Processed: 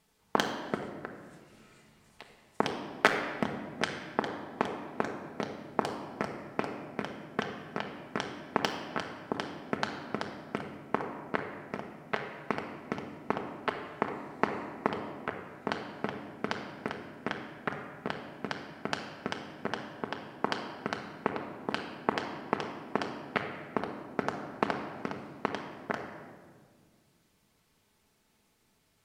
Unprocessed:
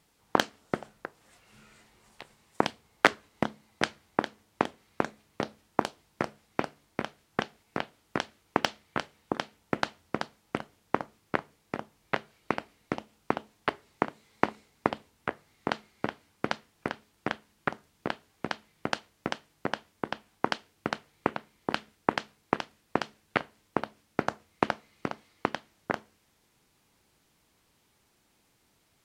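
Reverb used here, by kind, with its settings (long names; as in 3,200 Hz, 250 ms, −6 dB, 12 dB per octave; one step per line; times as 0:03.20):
rectangular room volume 2,300 cubic metres, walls mixed, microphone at 1.5 metres
level −4 dB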